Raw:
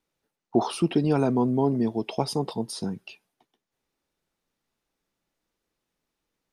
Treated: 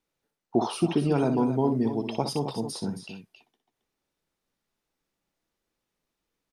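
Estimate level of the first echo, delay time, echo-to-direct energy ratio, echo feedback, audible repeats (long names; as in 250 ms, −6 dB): −9.0 dB, 61 ms, −6.5 dB, repeats not evenly spaced, 2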